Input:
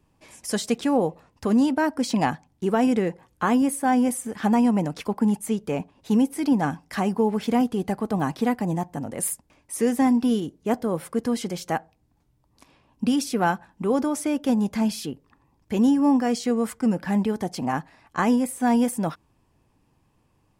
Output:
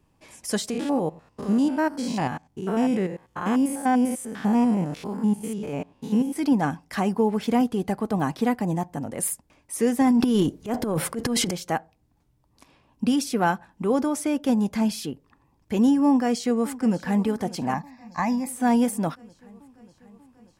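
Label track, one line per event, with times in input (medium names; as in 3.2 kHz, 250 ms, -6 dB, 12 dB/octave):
0.700000	6.360000	spectrogram pixelated in time every 100 ms
10.010000	11.510000	transient shaper attack -9 dB, sustain +12 dB
16.060000	17.240000	echo throw 590 ms, feedback 70%, level -17 dB
17.740000	18.470000	static phaser centre 2.1 kHz, stages 8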